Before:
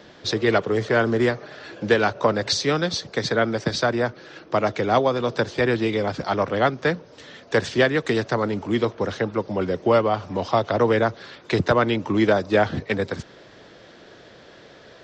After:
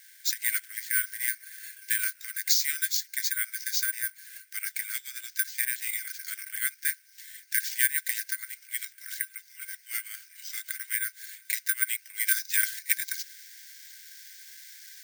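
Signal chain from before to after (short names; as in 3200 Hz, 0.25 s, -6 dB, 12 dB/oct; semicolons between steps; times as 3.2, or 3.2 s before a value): rippled Chebyshev high-pass 1500 Hz, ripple 9 dB; high shelf 3500 Hz -5.5 dB, from 12.27 s +7.5 dB; careless resampling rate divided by 4×, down none, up zero stuff; gain +1 dB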